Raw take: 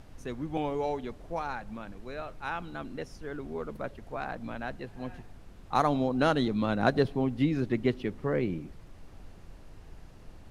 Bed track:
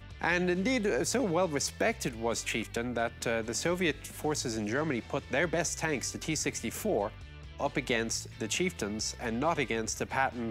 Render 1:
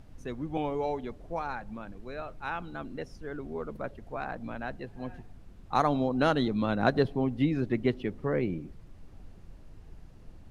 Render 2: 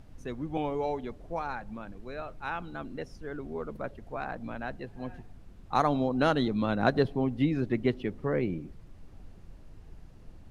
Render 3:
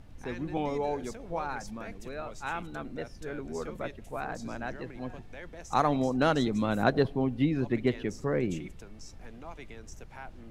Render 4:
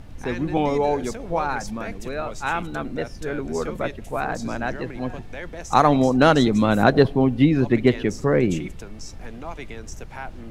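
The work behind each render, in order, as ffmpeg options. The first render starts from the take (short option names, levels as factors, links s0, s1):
-af "afftdn=nr=6:nf=-50"
-af anull
-filter_complex "[1:a]volume=0.15[s0];[0:a][s0]amix=inputs=2:normalize=0"
-af "volume=3.16,alimiter=limit=0.794:level=0:latency=1"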